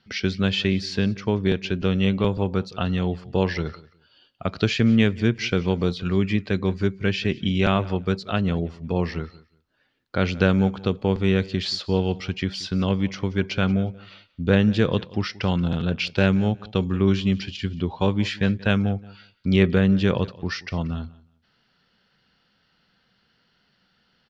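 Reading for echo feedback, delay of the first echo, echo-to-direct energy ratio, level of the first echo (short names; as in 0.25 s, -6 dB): 20%, 0.18 s, -21.0 dB, -21.0 dB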